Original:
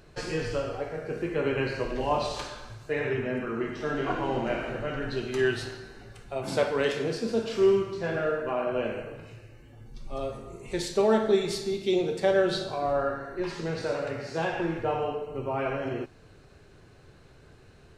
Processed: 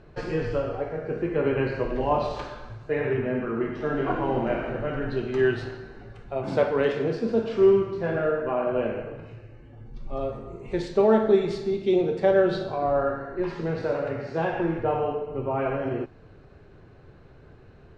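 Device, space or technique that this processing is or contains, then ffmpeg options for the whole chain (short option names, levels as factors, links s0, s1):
through cloth: -af "lowpass=6400,highshelf=f=3000:g=-16,volume=1.58"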